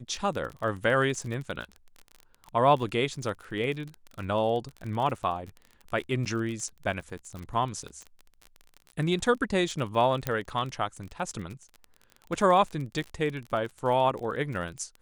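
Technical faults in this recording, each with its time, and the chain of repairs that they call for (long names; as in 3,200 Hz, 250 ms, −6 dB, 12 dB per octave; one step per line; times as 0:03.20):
surface crackle 32 per second −34 dBFS
0:06.25–0:06.26: drop-out 8 ms
0:07.39: click
0:10.27: click −13 dBFS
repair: click removal
repair the gap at 0:06.25, 8 ms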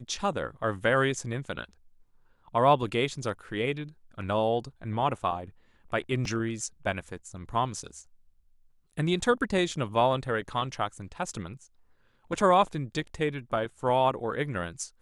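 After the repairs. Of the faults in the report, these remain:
none of them is left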